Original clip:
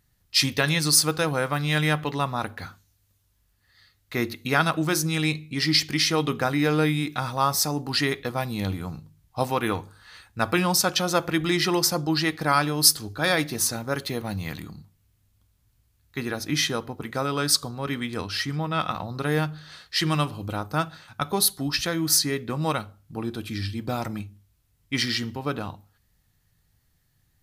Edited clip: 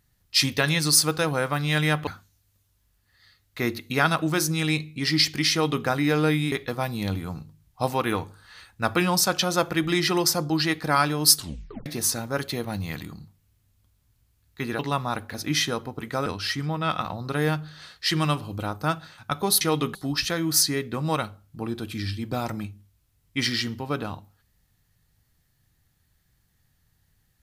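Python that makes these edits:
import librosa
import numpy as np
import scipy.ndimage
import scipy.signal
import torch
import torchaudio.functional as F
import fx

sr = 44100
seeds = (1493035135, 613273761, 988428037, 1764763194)

y = fx.edit(x, sr, fx.move(start_s=2.07, length_s=0.55, to_s=16.36),
    fx.duplicate(start_s=6.07, length_s=0.34, to_s=21.51),
    fx.cut(start_s=7.07, length_s=1.02),
    fx.tape_stop(start_s=12.93, length_s=0.5),
    fx.cut(start_s=17.28, length_s=0.88), tone=tone)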